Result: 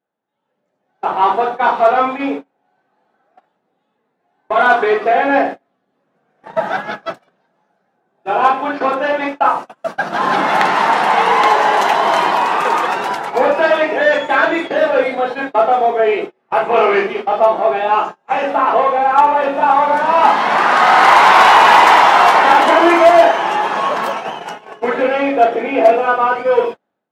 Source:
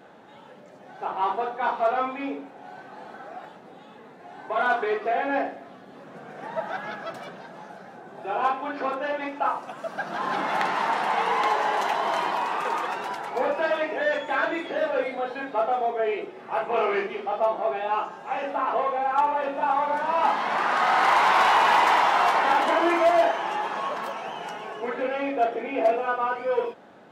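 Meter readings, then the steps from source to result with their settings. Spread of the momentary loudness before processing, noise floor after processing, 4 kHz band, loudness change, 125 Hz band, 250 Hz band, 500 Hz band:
17 LU, -69 dBFS, +11.5 dB, +12.0 dB, +11.0 dB, +11.5 dB, +11.5 dB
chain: gate -33 dBFS, range -34 dB; level rider gain up to 11 dB; trim +2 dB

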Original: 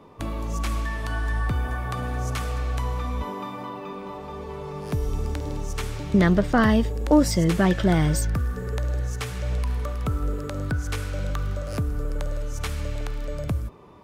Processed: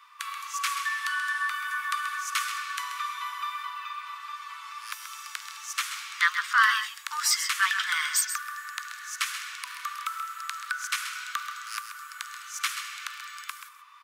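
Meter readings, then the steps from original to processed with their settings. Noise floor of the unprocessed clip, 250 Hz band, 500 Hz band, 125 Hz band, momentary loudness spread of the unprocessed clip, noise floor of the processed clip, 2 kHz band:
-36 dBFS, under -40 dB, under -40 dB, under -40 dB, 14 LU, -46 dBFS, +6.5 dB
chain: steep high-pass 1.1 kHz 72 dB/octave; delay 132 ms -9.5 dB; trim +6 dB

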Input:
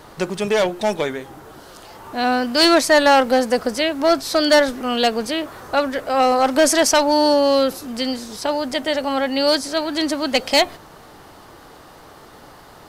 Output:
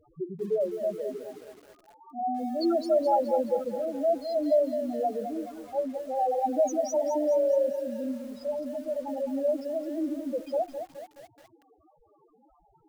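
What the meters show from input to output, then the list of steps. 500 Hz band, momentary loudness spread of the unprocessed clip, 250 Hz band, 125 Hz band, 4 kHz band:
-8.0 dB, 11 LU, -11.0 dB, no reading, under -25 dB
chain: loudest bins only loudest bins 2; bit-crushed delay 211 ms, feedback 55%, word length 7-bit, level -8.5 dB; trim -6.5 dB

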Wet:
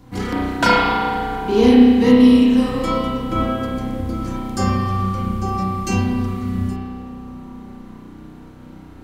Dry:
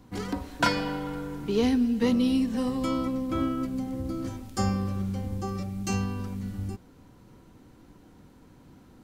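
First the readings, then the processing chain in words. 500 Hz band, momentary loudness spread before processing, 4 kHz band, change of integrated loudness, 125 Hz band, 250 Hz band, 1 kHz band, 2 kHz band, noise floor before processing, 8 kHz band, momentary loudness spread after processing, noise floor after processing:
+11.5 dB, 11 LU, +9.5 dB, +11.5 dB, +9.0 dB, +11.5 dB, +13.5 dB, +11.0 dB, -54 dBFS, +5.5 dB, 19 LU, -40 dBFS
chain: bucket-brigade echo 224 ms, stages 2048, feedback 82%, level -18.5 dB; spring tank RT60 1.6 s, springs 32 ms, chirp 25 ms, DRR -5.5 dB; trim +5.5 dB

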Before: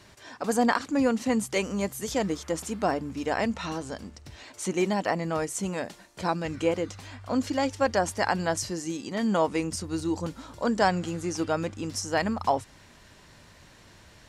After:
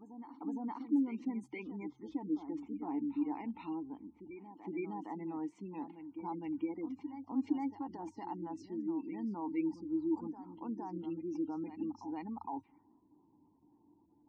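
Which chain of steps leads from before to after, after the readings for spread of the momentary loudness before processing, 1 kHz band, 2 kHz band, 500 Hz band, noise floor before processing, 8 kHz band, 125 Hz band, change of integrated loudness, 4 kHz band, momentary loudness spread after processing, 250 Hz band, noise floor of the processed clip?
10 LU, -15.5 dB, -24.0 dB, -18.0 dB, -54 dBFS, under -35 dB, -17.5 dB, -11.5 dB, under -30 dB, 10 LU, -7.0 dB, -69 dBFS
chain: peak limiter -19 dBFS, peak gain reduction 10 dB; level-controlled noise filter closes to 690 Hz, open at -24 dBFS; spectral gate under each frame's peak -20 dB strong; vowel filter u; reverse echo 463 ms -10 dB; trim +1 dB

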